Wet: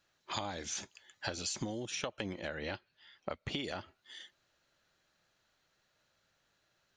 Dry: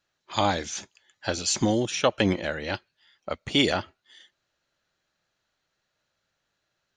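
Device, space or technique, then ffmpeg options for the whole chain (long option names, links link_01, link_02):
serial compression, leveller first: -filter_complex "[0:a]acompressor=threshold=-31dB:ratio=1.5,acompressor=threshold=-37dB:ratio=10,asettb=1/sr,asplit=3[link_01][link_02][link_03];[link_01]atrim=end=2.484[link_04];[link_02]atrim=start=2.48:end=3.64,asetpts=PTS-STARTPTS,afade=type=in:duration=0.004:curve=qsin,afade=type=out:start_time=1.156:duration=0.004:curve=qsin,lowpass=5000[link_05];[link_03]atrim=start=3.636[link_06];[link_04][link_05]acrossfade=duration=0.004:curve1=hsin:curve2=qsin[link_07];[link_07][link_06]acrossfade=duration=0.004:curve1=qsin:curve2=hsin,volume=2dB"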